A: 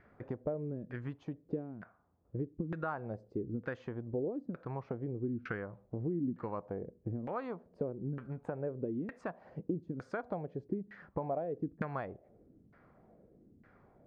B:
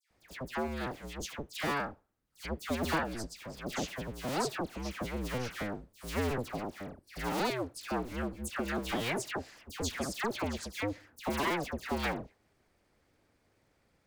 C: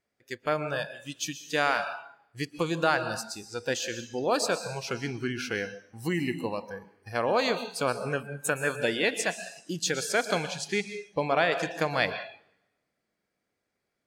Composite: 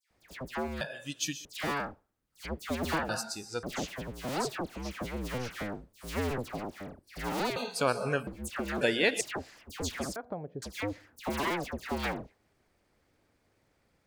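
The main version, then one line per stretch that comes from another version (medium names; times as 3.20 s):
B
0.81–1.45 s: from C
3.09–3.63 s: from C
7.56–8.27 s: from C
8.81–9.21 s: from C
10.16–10.62 s: from A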